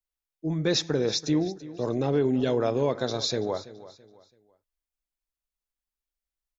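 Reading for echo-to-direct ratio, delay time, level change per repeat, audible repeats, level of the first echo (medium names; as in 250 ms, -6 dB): -16.5 dB, 332 ms, -9.5 dB, 2, -17.0 dB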